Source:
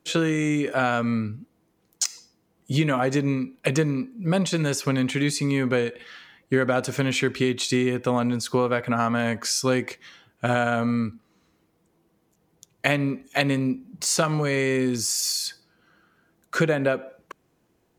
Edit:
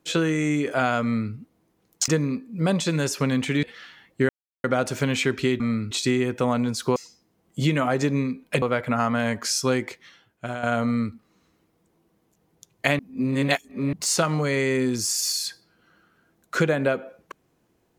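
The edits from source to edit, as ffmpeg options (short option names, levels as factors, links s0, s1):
-filter_complex "[0:a]asplit=11[s0][s1][s2][s3][s4][s5][s6][s7][s8][s9][s10];[s0]atrim=end=2.082[s11];[s1]atrim=start=3.738:end=5.292[s12];[s2]atrim=start=5.948:end=6.61,asetpts=PTS-STARTPTS,afade=t=out:st=0.658:d=0.004:c=hsin,apad=pad_dur=0.35[s13];[s3]atrim=start=6.61:end=7.572,asetpts=PTS-STARTPTS,afade=t=in:d=0.004:c=hsin[s14];[s4]atrim=start=1.028:end=1.342[s15];[s5]atrim=start=7.568:end=8.622[s16];[s6]atrim=start=2.078:end=3.742[s17];[s7]atrim=start=8.618:end=10.63,asetpts=PTS-STARTPTS,afade=t=out:st=1.032:d=0.98:silence=0.281838[s18];[s8]atrim=start=10.63:end=12.992,asetpts=PTS-STARTPTS,afade=t=in:d=0.004:c=hsin:silence=0.281838[s19];[s9]atrim=start=12.988:end=13.932,asetpts=PTS-STARTPTS,areverse[s20];[s10]atrim=start=13.928[s21];[s11][s12]acrossfade=d=0.004:c1=hsin:c2=hsin[s22];[s13][s14]concat=n=2:v=0:a=1[s23];[s22][s23]acrossfade=d=0.004:c1=hsin:c2=hsin[s24];[s24][s15]acrossfade=d=0.004:c1=hsin:c2=hsin[s25];[s25][s16]acrossfade=d=0.004:c1=hsin:c2=hsin[s26];[s26][s17]acrossfade=d=0.004:c1=hsin:c2=hsin[s27];[s18][s19]concat=n=2:v=0:a=1[s28];[s27][s28]acrossfade=d=0.004:c1=hsin:c2=hsin[s29];[s29][s20]acrossfade=d=0.004:c1=hsin:c2=hsin[s30];[s30][s21]acrossfade=d=0.004:c1=hsin:c2=hsin"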